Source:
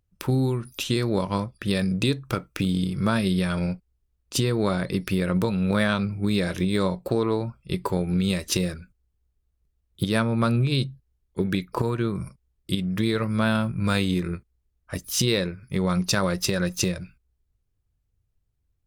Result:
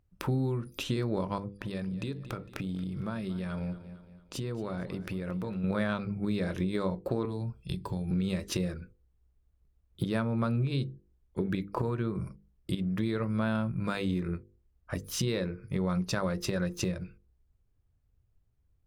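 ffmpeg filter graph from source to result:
ffmpeg -i in.wav -filter_complex "[0:a]asettb=1/sr,asplit=3[link_01][link_02][link_03];[link_01]atrim=end=1.384[link_04];[link_02]atrim=start=1.38:end=5.64,asetpts=PTS-STARTPTS,afade=type=in:duration=0.004:curve=qsin,afade=type=out:start_time=4.256:duration=0.004:curve=qsin,acompressor=threshold=-39dB:ratio=2:attack=3.2:release=140:knee=1:detection=peak,aecho=1:1:228|456|684|912:0.158|0.0682|0.0293|0.0126,atrim=end_sample=187866[link_05];[link_03]atrim=start=5.636[link_06];[link_04][link_05]acrossfade=duration=0.004:curve1=hsin:curve2=qsin[link_07];[link_07][link_06]acrossfade=duration=0.004:curve1=qsin:curve2=hsin,asettb=1/sr,asplit=3[link_08][link_09][link_10];[link_08]atrim=end=7.254[link_11];[link_09]atrim=start=7.25:end=8.11,asetpts=PTS-STARTPTS,afade=type=in:duration=0.004:curve=qsin,afade=type=out:start_time=0.856:duration=0.004:curve=qsin,highshelf=frequency=2600:width_type=q:width=1.5:gain=7.5,acrossover=split=280|7800[link_12][link_13][link_14];[link_12]acompressor=threshold=-31dB:ratio=4[link_15];[link_13]acompressor=threshold=-38dB:ratio=4[link_16];[link_14]acompressor=threshold=-51dB:ratio=4[link_17];[link_15][link_16][link_17]amix=inputs=3:normalize=0,aecho=1:1:1.2:0.33,atrim=end_sample=37926[link_18];[link_10]atrim=start=8.106[link_19];[link_11][link_18]acrossfade=duration=0.004:curve1=hsin:curve2=qsin[link_20];[link_20][link_19]acrossfade=duration=0.004:curve1=qsin:curve2=hsin,highshelf=frequency=2600:gain=-11.5,bandreject=frequency=50:width_type=h:width=6,bandreject=frequency=100:width_type=h:width=6,bandreject=frequency=150:width_type=h:width=6,bandreject=frequency=200:width_type=h:width=6,bandreject=frequency=250:width_type=h:width=6,bandreject=frequency=300:width_type=h:width=6,bandreject=frequency=350:width_type=h:width=6,bandreject=frequency=400:width_type=h:width=6,bandreject=frequency=450:width_type=h:width=6,bandreject=frequency=500:width_type=h:width=6,acompressor=threshold=-38dB:ratio=2,volume=3.5dB" out.wav

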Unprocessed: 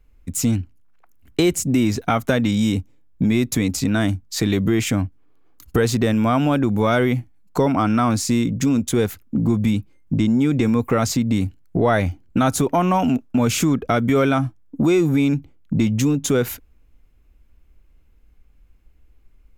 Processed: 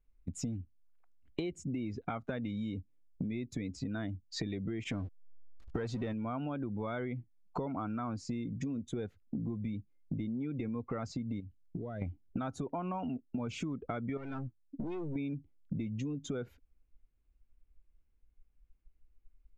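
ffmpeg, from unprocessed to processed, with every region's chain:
ffmpeg -i in.wav -filter_complex "[0:a]asettb=1/sr,asplit=3[link_01][link_02][link_03];[link_01]atrim=end=4.844[link_04];[link_02]atrim=start=4.84:end=6.13,asetpts=PTS-STARTPTS,afade=type=in:duration=0.004:curve=qsin,afade=type=out:start_time=1.286:duration=0.004:curve=qsin,aeval=exprs='val(0)+0.5*0.0841*sgn(val(0))':channel_layout=same,agate=range=-14dB:threshold=-23dB:ratio=16:release=100:detection=peak[link_05];[link_03]atrim=start=6.126[link_06];[link_04][link_05]acrossfade=duration=0.004:curve1=hsin:curve2=qsin[link_07];[link_07][link_06]acrossfade=duration=0.004:curve1=qsin:curve2=hsin,asettb=1/sr,asplit=3[link_08][link_09][link_10];[link_08]atrim=end=11.404[link_11];[link_09]atrim=start=11.4:end=12.02,asetpts=PTS-STARTPTS,afade=type=in:duration=0.004:curve=qsin,afade=type=out:start_time=0.616:duration=0.004:curve=qsin,acompressor=threshold=-26dB:ratio=6:attack=3.2:release=140:knee=1:detection=peak,equalizer=frequency=940:width_type=o:width=2.4:gain=-7[link_12];[link_10]atrim=start=12.016[link_13];[link_11][link_12]acrossfade=duration=0.004:curve1=hsin:curve2=qsin[link_14];[link_14][link_13]acrossfade=duration=0.004:curve1=qsin:curve2=hsin,asettb=1/sr,asplit=3[link_15][link_16][link_17];[link_15]atrim=end=14.174[link_18];[link_16]atrim=start=14.17:end=15.16,asetpts=PTS-STARTPTS,afade=type=in:duration=0.004:curve=qsin,afade=type=out:start_time=0.986:duration=0.004:curve=qsin,equalizer=frequency=650:width=0.97:gain=-6.5,aeval=exprs='(tanh(15.8*val(0)+0.55)-tanh(0.55))/15.8':channel_layout=same[link_19];[link_17]atrim=start=15.156[link_20];[link_18][link_19]acrossfade=duration=0.004:curve1=hsin:curve2=qsin[link_21];[link_21][link_20]acrossfade=duration=0.004:curve1=qsin:curve2=hsin,afftdn=noise_reduction=16:noise_floor=-29,lowpass=4000,acompressor=threshold=-31dB:ratio=6,volume=-4.5dB" out.wav

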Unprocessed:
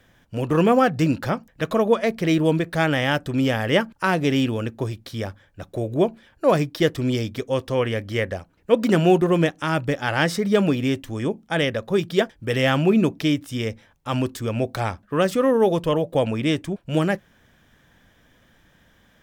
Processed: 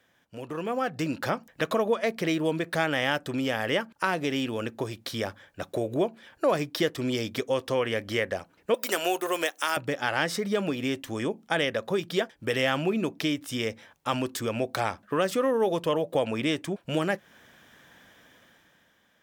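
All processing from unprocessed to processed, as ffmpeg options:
ffmpeg -i in.wav -filter_complex "[0:a]asettb=1/sr,asplit=3[link_01][link_02][link_03];[link_01]atrim=end=8.744[link_04];[link_02]atrim=start=8.74:end=9.77,asetpts=PTS-STARTPTS,afade=type=in:duration=0.004:curve=qsin,afade=type=out:start_time=1.026:duration=0.004:curve=qsin,highpass=410,aemphasis=mode=production:type=bsi[link_05];[link_03]atrim=start=9.766[link_06];[link_04][link_05]acrossfade=duration=0.004:curve1=hsin:curve2=qsin[link_07];[link_07][link_06]acrossfade=duration=0.004:curve1=qsin:curve2=hsin,acompressor=threshold=-28dB:ratio=2.5,highpass=frequency=360:poles=1,dynaudnorm=framelen=130:gausssize=13:maxgain=11.5dB,volume=-6.5dB" out.wav

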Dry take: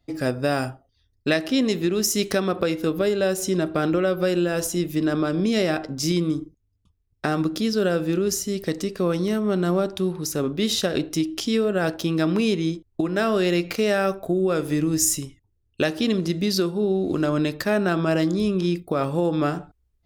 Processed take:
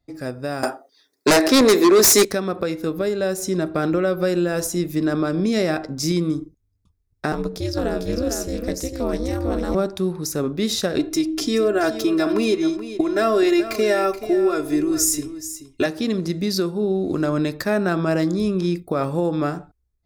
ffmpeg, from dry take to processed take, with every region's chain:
ffmpeg -i in.wav -filter_complex "[0:a]asettb=1/sr,asplit=3[link_01][link_02][link_03];[link_01]atrim=end=0.634[link_04];[link_02]atrim=start=0.63:end=2.25,asetpts=PTS-STARTPTS,afade=type=in:duration=0.004:curve=qsin,afade=type=out:start_time=1.616:duration=0.004:curve=qsin,highpass=frequency=310:width=0.5412,highpass=frequency=310:width=1.3066,equalizer=frequency=2900:width=5.1:gain=-5.5,aeval=exprs='0.376*sin(PI/2*4.47*val(0)/0.376)':channel_layout=same[link_05];[link_03]atrim=start=2.246[link_06];[link_04][link_05]acrossfade=duration=0.004:curve1=hsin:curve2=qsin[link_07];[link_07][link_06]acrossfade=duration=0.004:curve1=qsin:curve2=hsin,asettb=1/sr,asplit=3[link_08][link_09][link_10];[link_08]atrim=end=7.324[link_11];[link_09]atrim=start=7.32:end=9.75,asetpts=PTS-STARTPTS,afade=type=in:duration=0.004:curve=qsin,afade=type=out:start_time=2.426:duration=0.004:curve=qsin,equalizer=frequency=1400:width=7.6:gain=-5,aecho=1:1:450:0.562,atrim=end_sample=107163,aeval=exprs='val(0)*sin(2*PI*130*n/s)':channel_layout=same[link_12];[link_10]atrim=start=9.746[link_13];[link_11][link_12]acrossfade=duration=0.004:curve1=hsin:curve2=qsin[link_14];[link_14][link_13]acrossfade=duration=0.004:curve1=qsin:curve2=hsin,asettb=1/sr,asplit=3[link_15][link_16][link_17];[link_15]atrim=end=10.984[link_18];[link_16]atrim=start=10.98:end=15.86,asetpts=PTS-STARTPTS,afade=type=in:duration=0.004:curve=qsin,afade=type=out:start_time=4.876:duration=0.004:curve=qsin,aecho=1:1:2.9:0.98,atrim=end_sample=215208,bandreject=frequency=318.1:width_type=h:width=4,bandreject=frequency=636.2:width_type=h:width=4,bandreject=frequency=954.3:width_type=h:width=4,bandreject=frequency=1272.4:width_type=h:width=4,bandreject=frequency=1590.5:width_type=h:width=4,bandreject=frequency=1908.6:width_type=h:width=4,bandreject=frequency=2226.7:width_type=h:width=4,bandreject=frequency=2544.8:width_type=h:width=4,aecho=1:1:428:0.237,atrim=end_sample=215208[link_19];[link_17]atrim=start=15.856[link_20];[link_18][link_19]acrossfade=duration=0.004:curve1=hsin:curve2=qsin[link_21];[link_21][link_20]acrossfade=duration=0.004:curve1=qsin:curve2=hsin,equalizer=frequency=3000:width_type=o:width=0.31:gain=-9.5,dynaudnorm=framelen=360:gausssize=5:maxgain=7dB,volume=-5dB" out.wav

